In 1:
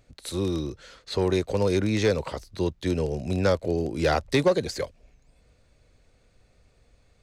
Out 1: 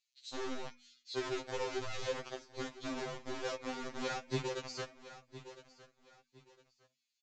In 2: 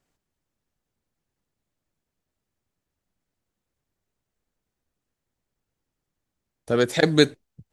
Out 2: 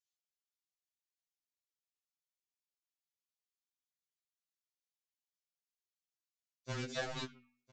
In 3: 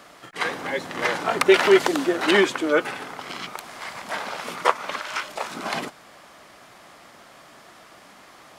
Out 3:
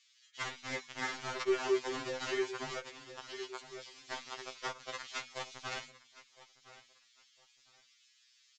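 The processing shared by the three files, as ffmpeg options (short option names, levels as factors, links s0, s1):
-filter_complex "[0:a]acrossover=split=2700[s0][s1];[s0]acrusher=bits=3:mix=0:aa=0.000001[s2];[s2][s1]amix=inputs=2:normalize=0,aecho=1:1:1009|2018:0.0944|0.0274,aresample=16000,volume=3.35,asoftclip=hard,volume=0.299,aresample=44100,flanger=delay=5.4:depth=3.6:regen=87:speed=1.4:shape=triangular,bandreject=f=245.1:t=h:w=4,bandreject=f=490.2:t=h:w=4,bandreject=f=735.3:t=h:w=4,bandreject=f=980.4:t=h:w=4,bandreject=f=1225.5:t=h:w=4,bandreject=f=1470.6:t=h:w=4,bandreject=f=1715.7:t=h:w=4,bandreject=f=1960.8:t=h:w=4,bandreject=f=2205.9:t=h:w=4,bandreject=f=2451:t=h:w=4,bandreject=f=2696.1:t=h:w=4,bandreject=f=2941.2:t=h:w=4,bandreject=f=3186.3:t=h:w=4,bandreject=f=3431.4:t=h:w=4,bandreject=f=3676.5:t=h:w=4,bandreject=f=3921.6:t=h:w=4,acompressor=threshold=0.0355:ratio=6,afftfilt=real='re*2.45*eq(mod(b,6),0)':imag='im*2.45*eq(mod(b,6),0)':win_size=2048:overlap=0.75,volume=0.75"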